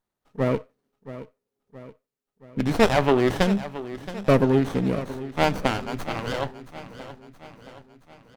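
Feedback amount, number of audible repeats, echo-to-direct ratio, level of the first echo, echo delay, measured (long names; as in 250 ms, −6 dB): 54%, 4, −13.0 dB, −14.5 dB, 673 ms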